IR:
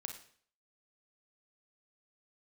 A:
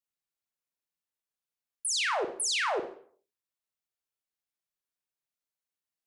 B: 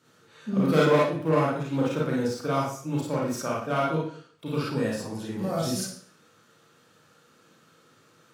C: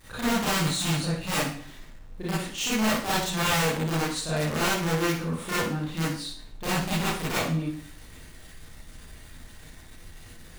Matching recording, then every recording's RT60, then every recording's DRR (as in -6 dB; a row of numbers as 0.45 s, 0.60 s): A; 0.55 s, 0.55 s, 0.55 s; 4.0 dB, -5.5 dB, -10.5 dB